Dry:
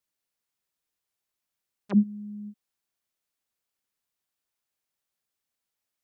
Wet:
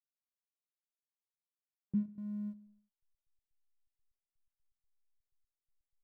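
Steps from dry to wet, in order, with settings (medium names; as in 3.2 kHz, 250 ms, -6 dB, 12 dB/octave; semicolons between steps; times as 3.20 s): compression 3:1, threshold -32 dBFS, peak gain reduction 12 dB; hysteresis with a dead band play -51.5 dBFS; trance gate "x..x.x.xxx." 124 bpm -60 dB; feedback delay 72 ms, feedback 58%, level -19 dB; trim -1.5 dB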